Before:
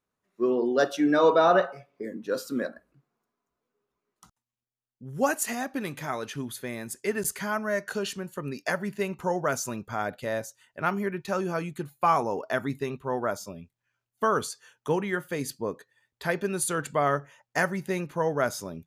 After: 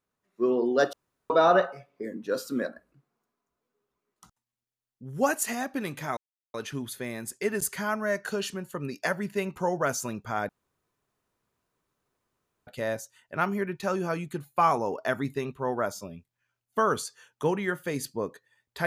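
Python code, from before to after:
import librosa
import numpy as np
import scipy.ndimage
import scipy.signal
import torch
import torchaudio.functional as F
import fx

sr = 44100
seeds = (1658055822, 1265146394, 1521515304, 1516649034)

y = fx.edit(x, sr, fx.room_tone_fill(start_s=0.93, length_s=0.37),
    fx.insert_silence(at_s=6.17, length_s=0.37),
    fx.insert_room_tone(at_s=10.12, length_s=2.18), tone=tone)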